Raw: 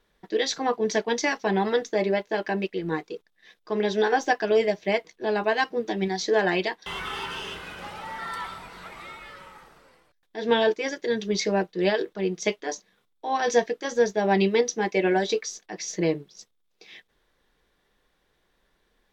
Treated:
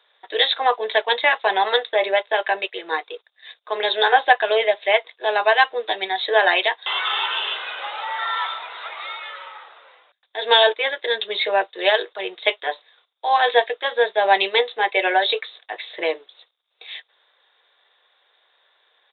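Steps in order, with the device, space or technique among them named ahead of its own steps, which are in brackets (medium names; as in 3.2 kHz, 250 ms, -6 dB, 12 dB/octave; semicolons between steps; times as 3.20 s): musical greeting card (resampled via 8 kHz; high-pass 570 Hz 24 dB/octave; peaking EQ 3.7 kHz +11.5 dB 0.25 oct); trim +9 dB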